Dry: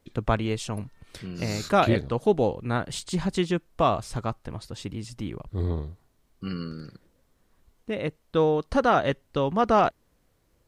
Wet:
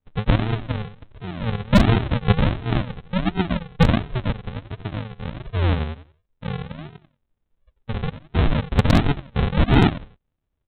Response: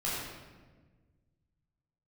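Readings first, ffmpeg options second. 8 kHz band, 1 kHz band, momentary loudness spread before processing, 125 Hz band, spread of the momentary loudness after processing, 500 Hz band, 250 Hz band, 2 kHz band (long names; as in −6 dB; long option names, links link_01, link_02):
can't be measured, −2.0 dB, 16 LU, +10.0 dB, 17 LU, −3.0 dB, +6.0 dB, +5.0 dB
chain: -af "afftdn=noise_reduction=17:noise_floor=-38,lowpass=2800,equalizer=frequency=300:width=1.4:gain=-12,aecho=1:1:90|180|270:0.224|0.0649|0.0188,aresample=8000,acrusher=samples=20:mix=1:aa=0.000001:lfo=1:lforange=12:lforate=1.4,aresample=44100,aeval=exprs='0.188*(abs(mod(val(0)/0.188+3,4)-2)-1)':channel_layout=same,volume=8.5dB"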